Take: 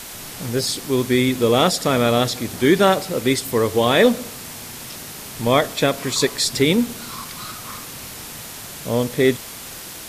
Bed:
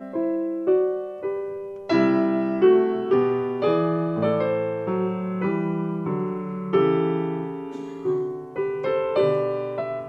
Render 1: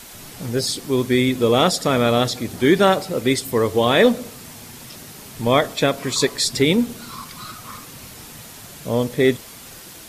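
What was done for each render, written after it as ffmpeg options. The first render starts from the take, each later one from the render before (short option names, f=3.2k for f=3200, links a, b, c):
-af "afftdn=nr=6:nf=-35"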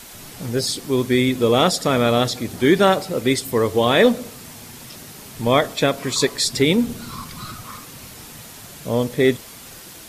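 -filter_complex "[0:a]asettb=1/sr,asplit=3[a][b][c];[a]atrim=end=6.844[d];[b]atrim=start=6.84:end=7.64,asetpts=PTS-STARTPTS,afade=t=in:d=0.004:c=qsin,afade=t=out:st=0.796:d=0.004:c=qsin,lowshelf=f=210:g=8.5[e];[c]atrim=start=7.636[f];[d][e]acrossfade=d=0.004:c1=hsin:c2=qsin[g];[g][f]acrossfade=d=0.004:c1=qsin:c2=hsin"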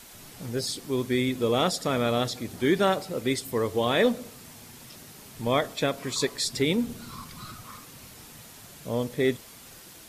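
-af "volume=-8dB"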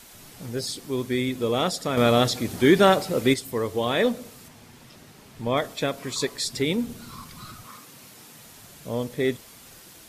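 -filter_complex "[0:a]asettb=1/sr,asplit=3[a][b][c];[a]atrim=end=1.974[d];[b]atrim=start=1.97:end=3.34,asetpts=PTS-STARTPTS,afade=t=in:d=0.004:c=qsin,afade=t=out:st=1.366:d=0.004:c=qsin,acontrast=71[e];[c]atrim=start=3.336[f];[d][e]acrossfade=d=0.004:c1=hsin:c2=qsin[g];[g][f]acrossfade=d=0.004:c1=qsin:c2=hsin,asettb=1/sr,asplit=3[h][i][j];[h]atrim=end=4.484[k];[i]atrim=start=4.48:end=5.57,asetpts=PTS-STARTPTS,afade=t=in:d=0.004:c=qsin,afade=t=out:st=1.086:d=0.004:c=qsin,aemphasis=mode=reproduction:type=cd[l];[j]atrim=start=5.566[m];[k][l]acrossfade=d=0.004:c1=hsin:c2=qsin[n];[n][m]acrossfade=d=0.004:c1=qsin:c2=hsin,asettb=1/sr,asplit=3[o][p][q];[o]atrim=end=7.684[r];[p]atrim=start=7.68:end=8.43,asetpts=PTS-STARTPTS,afade=t=in:d=0.004:c=qsin,afade=t=out:st=0.746:d=0.004:c=qsin,highpass=140[s];[q]atrim=start=8.426[t];[r][s]acrossfade=d=0.004:c1=hsin:c2=qsin[u];[u][t]acrossfade=d=0.004:c1=qsin:c2=hsin"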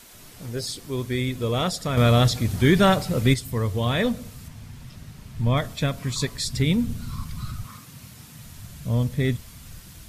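-af "bandreject=f=820:w=16,asubboost=boost=10.5:cutoff=120"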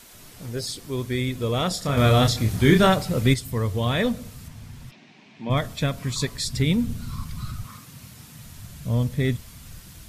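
-filter_complex "[0:a]asettb=1/sr,asplit=3[a][b][c];[a]atrim=end=1.684[d];[b]atrim=start=1.68:end=2.87,asetpts=PTS-STARTPTS,afade=t=in:d=0.004:c=qsin,afade=t=out:st=1.186:d=0.004:c=qsin,asplit=2[e][f];[f]adelay=28,volume=-5dB[g];[e][g]amix=inputs=2:normalize=0,atrim=end_sample=52479[h];[c]atrim=start=2.866[i];[d][h]acrossfade=d=0.004:c1=hsin:c2=qsin[j];[j][i]acrossfade=d=0.004:c1=qsin:c2=hsin,asplit=3[k][l][m];[k]afade=t=out:st=4.9:d=0.02[n];[l]highpass=f=230:w=0.5412,highpass=f=230:w=1.3066,equalizer=f=340:t=q:w=4:g=3,equalizer=f=500:t=q:w=4:g=-6,equalizer=f=770:t=q:w=4:g=4,equalizer=f=1.3k:t=q:w=4:g=-9,equalizer=f=2.4k:t=q:w=4:g=7,equalizer=f=4.7k:t=q:w=4:g=-4,lowpass=f=5.1k:w=0.5412,lowpass=f=5.1k:w=1.3066,afade=t=in:st=4.9:d=0.02,afade=t=out:st=5.49:d=0.02[o];[m]afade=t=in:st=5.49:d=0.02[p];[n][o][p]amix=inputs=3:normalize=0"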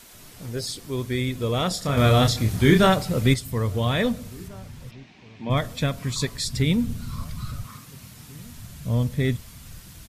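-filter_complex "[0:a]asplit=2[a][b];[b]adelay=1691,volume=-25dB,highshelf=f=4k:g=-38[c];[a][c]amix=inputs=2:normalize=0"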